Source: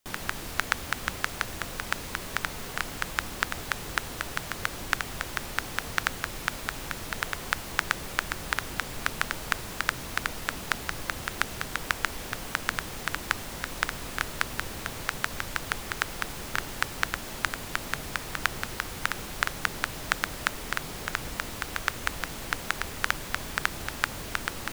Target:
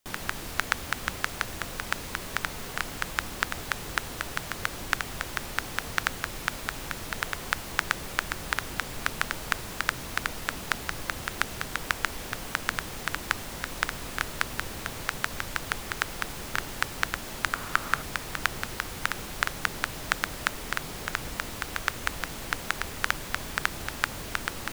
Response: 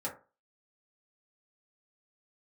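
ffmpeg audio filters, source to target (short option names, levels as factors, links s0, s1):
-filter_complex "[0:a]asettb=1/sr,asplit=3[s0][s1][s2];[s0]atrim=end=17.534[s3];[s1]atrim=start=17.53:end=18.02,asetpts=PTS-STARTPTS,afade=t=in:d=0.004:c=qsin,afade=t=out:st=0.486:d=0.004:c=qsin,equalizer=f=1300:w=2.2:g=10[s4];[s2]atrim=start=18.016[s5];[s3][s4]acrossfade=d=0.004:c1=hsin:c2=qsin[s6];[s6][s5]acrossfade=d=0.004:c1=qsin:c2=hsin"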